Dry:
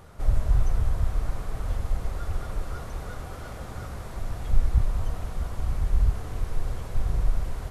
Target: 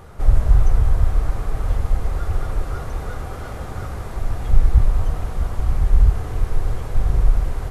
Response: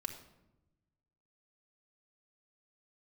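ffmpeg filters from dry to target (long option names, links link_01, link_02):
-filter_complex "[0:a]asplit=2[link_01][link_02];[1:a]atrim=start_sample=2205,asetrate=66150,aresample=44100,lowpass=3000[link_03];[link_02][link_03]afir=irnorm=-1:irlink=0,volume=-2dB[link_04];[link_01][link_04]amix=inputs=2:normalize=0,volume=4dB"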